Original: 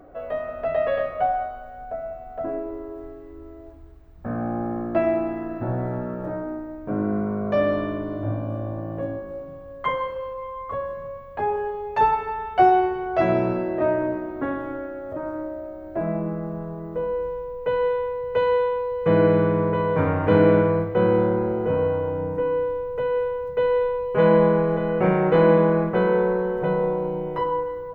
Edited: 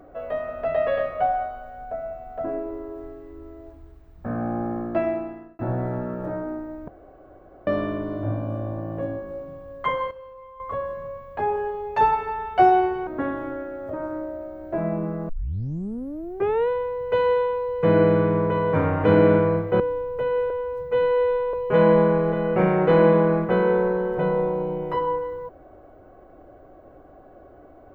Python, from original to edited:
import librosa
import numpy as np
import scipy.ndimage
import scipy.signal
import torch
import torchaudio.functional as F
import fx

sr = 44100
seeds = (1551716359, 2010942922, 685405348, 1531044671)

y = fx.edit(x, sr, fx.fade_out_span(start_s=4.53, length_s=1.06, curve='qsin'),
    fx.room_tone_fill(start_s=6.88, length_s=0.79),
    fx.clip_gain(start_s=10.11, length_s=0.49, db=-10.5),
    fx.cut(start_s=13.07, length_s=1.23),
    fx.tape_start(start_s=16.52, length_s=1.4),
    fx.cut(start_s=21.03, length_s=1.56),
    fx.stretch_span(start_s=23.29, length_s=0.69, factor=1.5), tone=tone)